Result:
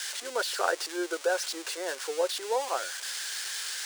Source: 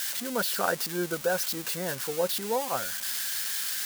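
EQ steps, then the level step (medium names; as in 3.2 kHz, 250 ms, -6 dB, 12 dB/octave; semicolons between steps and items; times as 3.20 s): Savitzky-Golay filter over 9 samples; steep high-pass 330 Hz 48 dB/octave; 0.0 dB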